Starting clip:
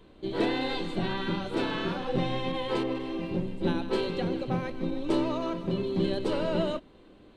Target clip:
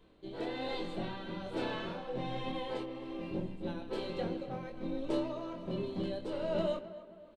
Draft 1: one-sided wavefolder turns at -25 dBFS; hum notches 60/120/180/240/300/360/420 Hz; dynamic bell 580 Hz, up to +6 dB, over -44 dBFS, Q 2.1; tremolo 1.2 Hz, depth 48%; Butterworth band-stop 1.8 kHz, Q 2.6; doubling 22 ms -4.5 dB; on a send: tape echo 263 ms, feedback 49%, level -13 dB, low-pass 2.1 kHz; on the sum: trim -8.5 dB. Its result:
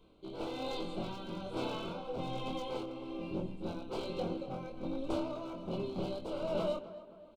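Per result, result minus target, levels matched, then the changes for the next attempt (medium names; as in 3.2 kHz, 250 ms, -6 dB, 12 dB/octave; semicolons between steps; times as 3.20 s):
one-sided wavefolder: distortion +24 dB; 2 kHz band -3.5 dB
change: one-sided wavefolder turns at -18 dBFS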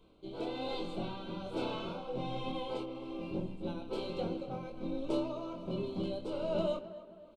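2 kHz band -4.5 dB
remove: Butterworth band-stop 1.8 kHz, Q 2.6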